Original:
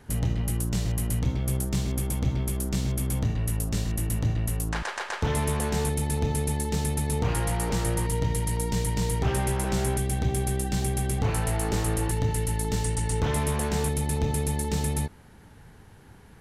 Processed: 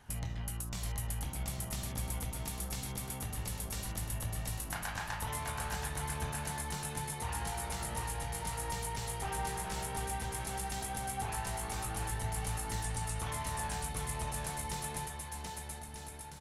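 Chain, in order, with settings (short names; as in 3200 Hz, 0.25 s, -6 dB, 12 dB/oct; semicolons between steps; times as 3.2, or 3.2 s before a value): resonant low shelf 570 Hz -8 dB, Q 1.5; compressor, threshold -32 dBFS, peak gain reduction 6.5 dB; flange 0.16 Hz, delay 0.3 ms, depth 2.3 ms, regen +70%; bouncing-ball echo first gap 0.73 s, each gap 0.7×, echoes 5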